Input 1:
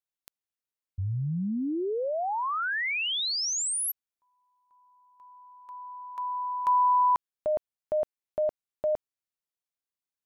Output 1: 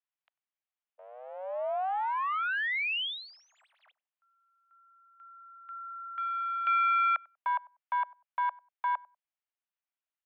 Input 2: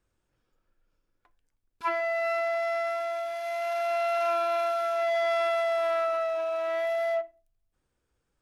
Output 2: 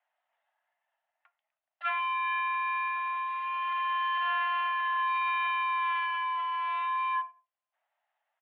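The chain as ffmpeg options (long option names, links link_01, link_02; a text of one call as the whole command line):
ffmpeg -i in.wav -filter_complex "[0:a]aeval=exprs='clip(val(0),-1,0.0266)':channel_layout=same,asplit=2[link_01][link_02];[link_02]adelay=96,lowpass=frequency=880:poles=1,volume=-22dB,asplit=2[link_03][link_04];[link_04]adelay=96,lowpass=frequency=880:poles=1,volume=0.22[link_05];[link_03][link_05]amix=inputs=2:normalize=0[link_06];[link_01][link_06]amix=inputs=2:normalize=0,highpass=frequency=240:width_type=q:width=0.5412,highpass=frequency=240:width_type=q:width=1.307,lowpass=frequency=2900:width_type=q:width=0.5176,lowpass=frequency=2900:width_type=q:width=0.7071,lowpass=frequency=2900:width_type=q:width=1.932,afreqshift=370" out.wav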